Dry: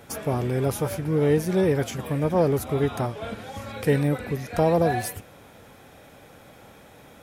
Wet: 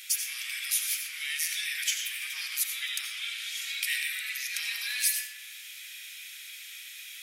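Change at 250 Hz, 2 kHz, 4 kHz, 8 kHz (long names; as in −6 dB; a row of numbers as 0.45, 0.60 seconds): below −40 dB, +4.5 dB, +11.0 dB, +9.5 dB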